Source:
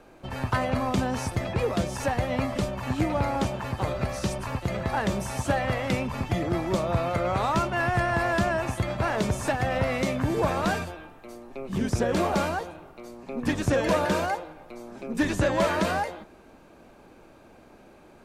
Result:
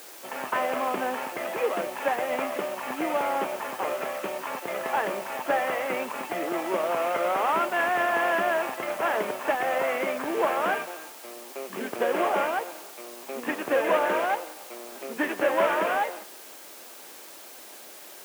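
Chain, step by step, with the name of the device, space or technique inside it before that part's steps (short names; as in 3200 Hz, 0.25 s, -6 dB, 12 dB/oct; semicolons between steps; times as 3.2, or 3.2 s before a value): army field radio (BPF 360–2900 Hz; CVSD 16 kbps; white noise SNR 18 dB); HPF 270 Hz 12 dB/oct; gain +3 dB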